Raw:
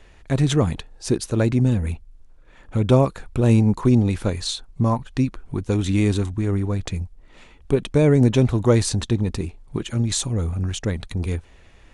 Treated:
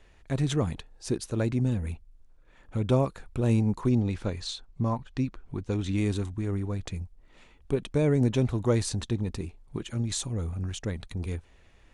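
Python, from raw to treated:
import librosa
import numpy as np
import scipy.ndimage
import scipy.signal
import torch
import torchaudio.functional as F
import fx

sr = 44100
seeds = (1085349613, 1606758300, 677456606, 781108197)

y = fx.lowpass(x, sr, hz=6900.0, slope=12, at=(3.89, 5.98))
y = y * librosa.db_to_amplitude(-8.0)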